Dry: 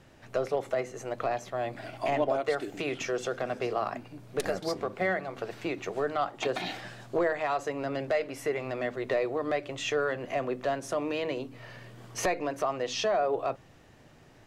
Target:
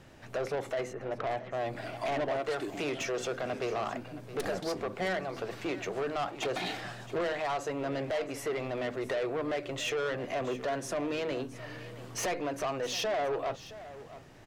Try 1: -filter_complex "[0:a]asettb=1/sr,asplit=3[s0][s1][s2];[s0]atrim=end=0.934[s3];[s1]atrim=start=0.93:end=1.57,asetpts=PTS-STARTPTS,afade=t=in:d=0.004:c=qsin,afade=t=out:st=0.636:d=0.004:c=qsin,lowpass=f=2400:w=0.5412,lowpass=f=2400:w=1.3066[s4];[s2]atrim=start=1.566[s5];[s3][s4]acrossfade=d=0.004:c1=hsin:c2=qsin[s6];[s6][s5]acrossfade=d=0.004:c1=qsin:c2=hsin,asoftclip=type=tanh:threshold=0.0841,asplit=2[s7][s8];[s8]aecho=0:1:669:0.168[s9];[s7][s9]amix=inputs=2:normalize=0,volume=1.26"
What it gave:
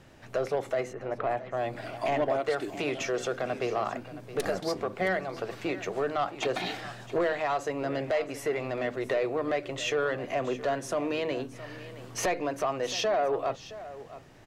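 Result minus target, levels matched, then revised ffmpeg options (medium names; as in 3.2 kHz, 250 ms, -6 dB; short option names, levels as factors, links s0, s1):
saturation: distortion -9 dB
-filter_complex "[0:a]asettb=1/sr,asplit=3[s0][s1][s2];[s0]atrim=end=0.934[s3];[s1]atrim=start=0.93:end=1.57,asetpts=PTS-STARTPTS,afade=t=in:d=0.004:c=qsin,afade=t=out:st=0.636:d=0.004:c=qsin,lowpass=f=2400:w=0.5412,lowpass=f=2400:w=1.3066[s4];[s2]atrim=start=1.566[s5];[s3][s4]acrossfade=d=0.004:c1=hsin:c2=qsin[s6];[s6][s5]acrossfade=d=0.004:c1=qsin:c2=hsin,asoftclip=type=tanh:threshold=0.0316,asplit=2[s7][s8];[s8]aecho=0:1:669:0.168[s9];[s7][s9]amix=inputs=2:normalize=0,volume=1.26"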